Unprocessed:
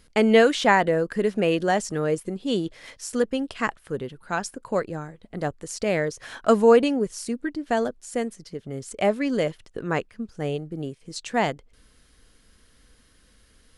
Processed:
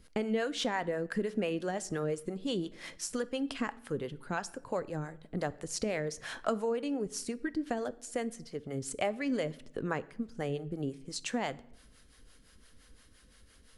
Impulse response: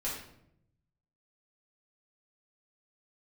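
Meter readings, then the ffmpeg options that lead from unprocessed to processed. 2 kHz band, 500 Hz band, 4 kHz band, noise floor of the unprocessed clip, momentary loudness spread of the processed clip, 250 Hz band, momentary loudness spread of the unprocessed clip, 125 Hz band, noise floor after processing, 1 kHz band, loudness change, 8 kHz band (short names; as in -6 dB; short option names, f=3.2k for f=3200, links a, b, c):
-11.5 dB, -12.0 dB, -8.0 dB, -59 dBFS, 7 LU, -9.5 dB, 17 LU, -8.0 dB, -60 dBFS, -12.5 dB, -11.0 dB, -4.5 dB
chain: -filter_complex "[0:a]acompressor=threshold=-27dB:ratio=6,acrossover=split=470[a][b];[a]aeval=exprs='val(0)*(1-0.7/2+0.7/2*cos(2*PI*5.8*n/s))':c=same[c];[b]aeval=exprs='val(0)*(1-0.7/2-0.7/2*cos(2*PI*5.8*n/s))':c=same[d];[c][d]amix=inputs=2:normalize=0,asplit=2[e][f];[1:a]atrim=start_sample=2205[g];[f][g]afir=irnorm=-1:irlink=0,volume=-18.5dB[h];[e][h]amix=inputs=2:normalize=0"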